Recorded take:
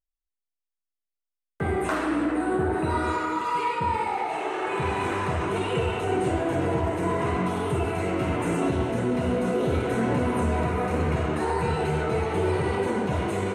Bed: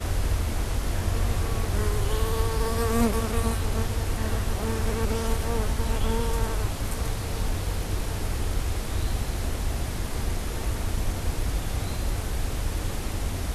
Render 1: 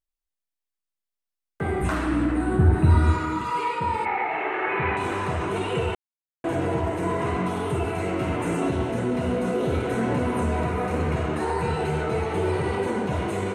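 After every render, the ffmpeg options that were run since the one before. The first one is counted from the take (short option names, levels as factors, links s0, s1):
-filter_complex "[0:a]asplit=3[s0][s1][s2];[s0]afade=t=out:st=1.78:d=0.02[s3];[s1]asubboost=boost=10:cutoff=170,afade=t=in:st=1.78:d=0.02,afade=t=out:st=3.5:d=0.02[s4];[s2]afade=t=in:st=3.5:d=0.02[s5];[s3][s4][s5]amix=inputs=3:normalize=0,asettb=1/sr,asplit=3[s6][s7][s8];[s6]atrim=end=4.054[s9];[s7]atrim=start=4.05:end=4.97,asetpts=PTS-STARTPTS,afade=t=in:d=0.004:c=qsin,afade=t=out:st=0.916:d=0.004:c=qsin,lowpass=f=2100:t=q:w=2.8[s10];[s8]atrim=start=4.966[s11];[s9][s10]acrossfade=d=0.004:c1=hsin:c2=qsin[s12];[s12][s11]acrossfade=d=0.004:c1=qsin:c2=hsin,asplit=3[s13][s14][s15];[s13]atrim=end=5.95,asetpts=PTS-STARTPTS,afade=t=out:st=5.946:d=0.004:c=hsin[s16];[s14]atrim=start=5.95:end=6.44,asetpts=PTS-STARTPTS,volume=0[s17];[s15]atrim=start=6.44,asetpts=PTS-STARTPTS,afade=t=in:d=0.004:c=hsin[s18];[s16][s17][s18]concat=n=3:v=0:a=1"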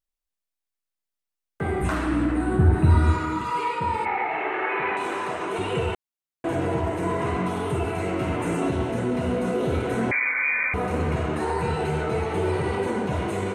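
-filter_complex "[0:a]asettb=1/sr,asplit=3[s0][s1][s2];[s0]atrim=end=4.644[s3];[s1]atrim=start=4.64:end=5.59,asetpts=PTS-STARTPTS,afade=t=in:d=0.004:c=qsin,afade=t=out:st=0.946:d=0.004:c=qsin,highpass=300[s4];[s2]atrim=start=5.586[s5];[s3][s4]acrossfade=d=0.004:c1=hsin:c2=qsin[s6];[s6][s5]acrossfade=d=0.004:c1=qsin:c2=hsin,asettb=1/sr,asplit=3[s7][s8][s9];[s7]atrim=end=10.114[s10];[s8]atrim=start=10.11:end=10.74,asetpts=PTS-STARTPTS,afade=t=in:d=0.004:c=qsin,afade=t=out:st=0.626:d=0.004:c=qsin,lowpass=f=2100:t=q:w=0.5098,lowpass=f=2100:t=q:w=0.6013,lowpass=f=2100:t=q:w=0.9,lowpass=f=2100:t=q:w=2.563,afreqshift=-2500[s11];[s9]atrim=start=10.736[s12];[s10][s11]acrossfade=d=0.004:c1=hsin:c2=qsin[s13];[s13][s12]acrossfade=d=0.004:c1=qsin:c2=hsin"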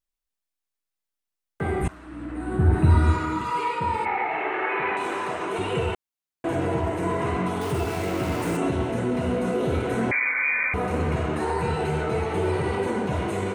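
-filter_complex "[0:a]asettb=1/sr,asplit=3[s0][s1][s2];[s0]atrim=end=7.614[s3];[s1]atrim=start=7.61:end=8.57,asetpts=PTS-STARTPTS,afade=t=in:d=0.004:c=qsin,afade=t=out:st=0.956:d=0.004:c=qsin,aeval=exprs='val(0)*gte(abs(val(0)),0.0237)':c=same[s4];[s2]atrim=start=8.566[s5];[s3][s4]acrossfade=d=0.004:c1=hsin:c2=qsin[s6];[s6][s5]acrossfade=d=0.004:c1=qsin:c2=hsin,asplit=2[s7][s8];[s7]atrim=end=1.88,asetpts=PTS-STARTPTS,afade=t=out:st=1.876:d=0.004:c=hsin:silence=0.1[s9];[s8]atrim=start=1.88,asetpts=PTS-STARTPTS,afade=t=in:d=0.86:c=qua:silence=0.1[s10];[s9][s10]concat=n=2:v=0:a=1"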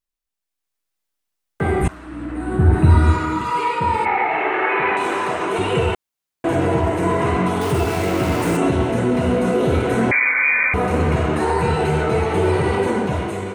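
-af "dynaudnorm=f=170:g=7:m=2.24"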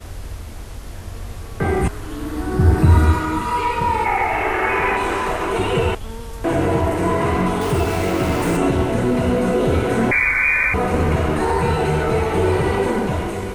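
-filter_complex "[1:a]volume=0.501[s0];[0:a][s0]amix=inputs=2:normalize=0"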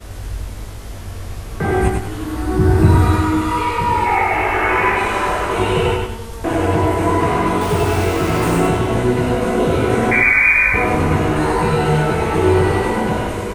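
-filter_complex "[0:a]asplit=2[s0][s1];[s1]adelay=19,volume=0.562[s2];[s0][s2]amix=inputs=2:normalize=0,aecho=1:1:99|198|297|396|495:0.668|0.234|0.0819|0.0287|0.01"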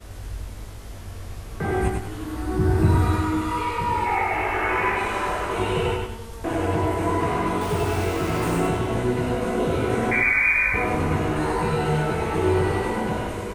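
-af "volume=0.447"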